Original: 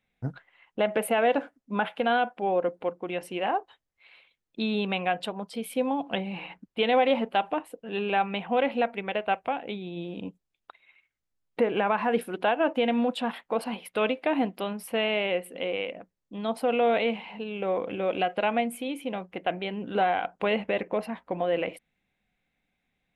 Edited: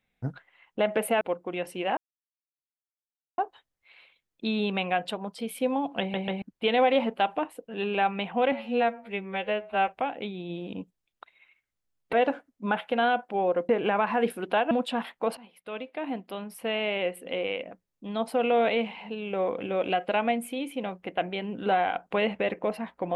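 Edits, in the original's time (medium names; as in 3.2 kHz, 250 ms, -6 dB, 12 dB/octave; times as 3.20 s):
1.21–2.77 s: move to 11.60 s
3.53 s: insert silence 1.41 s
6.15 s: stutter in place 0.14 s, 3 plays
8.67–9.35 s: stretch 2×
12.62–13.00 s: delete
13.66–15.59 s: fade in, from -19 dB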